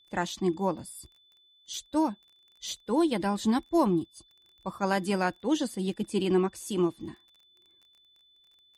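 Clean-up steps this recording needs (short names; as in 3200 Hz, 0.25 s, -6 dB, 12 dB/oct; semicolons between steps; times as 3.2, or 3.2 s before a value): de-click; notch 3500 Hz, Q 30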